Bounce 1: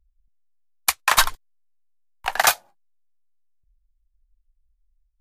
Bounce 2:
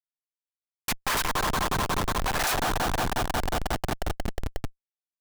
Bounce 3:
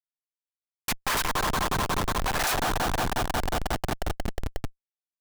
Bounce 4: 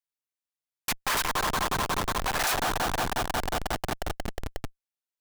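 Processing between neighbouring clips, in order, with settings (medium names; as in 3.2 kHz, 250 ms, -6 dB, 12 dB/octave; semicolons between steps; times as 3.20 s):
feedback echo behind a band-pass 180 ms, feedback 83%, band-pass 830 Hz, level -7 dB; Schmitt trigger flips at -32.5 dBFS; trim +1.5 dB
no audible change
bass shelf 350 Hz -4.5 dB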